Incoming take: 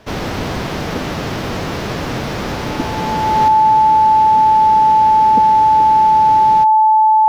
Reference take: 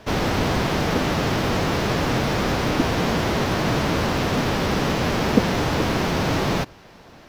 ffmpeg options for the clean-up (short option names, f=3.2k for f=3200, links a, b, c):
-af "bandreject=f=870:w=30,asetnsamples=n=441:p=0,asendcmd='3.48 volume volume 7dB',volume=0dB"